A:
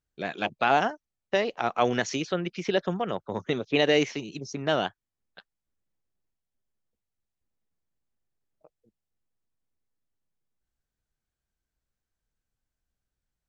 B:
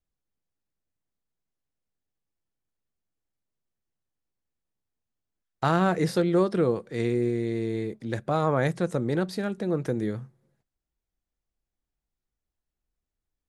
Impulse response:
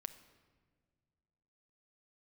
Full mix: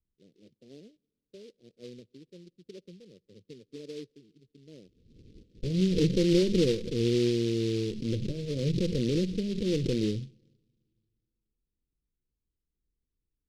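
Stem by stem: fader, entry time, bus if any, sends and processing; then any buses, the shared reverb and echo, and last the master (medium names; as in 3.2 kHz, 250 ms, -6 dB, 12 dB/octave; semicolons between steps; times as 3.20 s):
-19.5 dB, 0.00 s, send -16.5 dB, three bands expanded up and down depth 40%
+1.0 dB, 0.00 s, send -18.5 dB, comb filter that takes the minimum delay 0.54 ms; swell ahead of each attack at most 54 dB/s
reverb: on, pre-delay 6 ms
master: steep low-pass 510 Hz 72 dB/octave; delay time shaken by noise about 3.6 kHz, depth 0.081 ms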